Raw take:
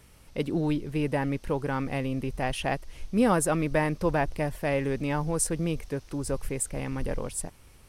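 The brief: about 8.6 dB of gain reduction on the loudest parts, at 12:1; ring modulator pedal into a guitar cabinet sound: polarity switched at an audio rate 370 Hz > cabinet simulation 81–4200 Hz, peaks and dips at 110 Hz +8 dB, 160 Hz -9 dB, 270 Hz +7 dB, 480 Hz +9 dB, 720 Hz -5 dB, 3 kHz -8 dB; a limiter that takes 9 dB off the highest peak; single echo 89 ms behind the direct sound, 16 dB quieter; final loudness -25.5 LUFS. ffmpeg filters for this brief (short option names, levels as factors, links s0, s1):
-af "acompressor=threshold=0.0501:ratio=12,alimiter=level_in=1.41:limit=0.0631:level=0:latency=1,volume=0.708,aecho=1:1:89:0.158,aeval=exprs='val(0)*sgn(sin(2*PI*370*n/s))':c=same,highpass=81,equalizer=f=110:t=q:w=4:g=8,equalizer=f=160:t=q:w=4:g=-9,equalizer=f=270:t=q:w=4:g=7,equalizer=f=480:t=q:w=4:g=9,equalizer=f=720:t=q:w=4:g=-5,equalizer=f=3000:t=q:w=4:g=-8,lowpass=f=4200:w=0.5412,lowpass=f=4200:w=1.3066,volume=2.82"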